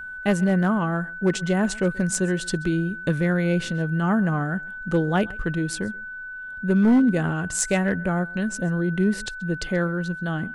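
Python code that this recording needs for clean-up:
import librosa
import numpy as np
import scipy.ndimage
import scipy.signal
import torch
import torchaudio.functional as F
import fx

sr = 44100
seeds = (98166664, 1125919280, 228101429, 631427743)

y = fx.fix_declip(x, sr, threshold_db=-13.0)
y = fx.notch(y, sr, hz=1500.0, q=30.0)
y = fx.fix_echo_inverse(y, sr, delay_ms=132, level_db=-23.5)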